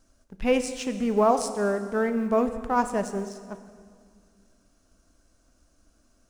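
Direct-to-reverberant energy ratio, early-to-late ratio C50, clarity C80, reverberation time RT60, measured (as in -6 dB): 9.0 dB, 10.5 dB, 11.5 dB, 2.0 s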